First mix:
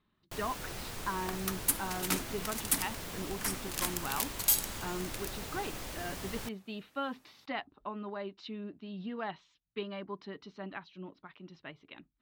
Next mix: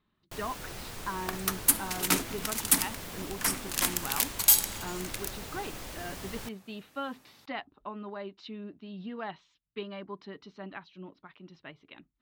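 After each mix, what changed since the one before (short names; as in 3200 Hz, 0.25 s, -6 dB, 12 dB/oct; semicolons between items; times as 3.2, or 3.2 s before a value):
second sound +6.5 dB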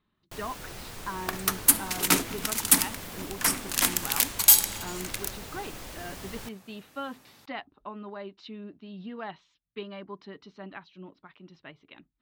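second sound +4.0 dB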